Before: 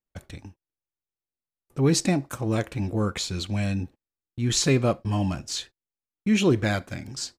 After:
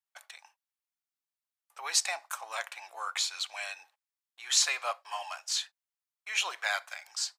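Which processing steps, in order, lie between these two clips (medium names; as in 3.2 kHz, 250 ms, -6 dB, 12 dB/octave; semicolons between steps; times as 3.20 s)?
steep high-pass 770 Hz 36 dB/octave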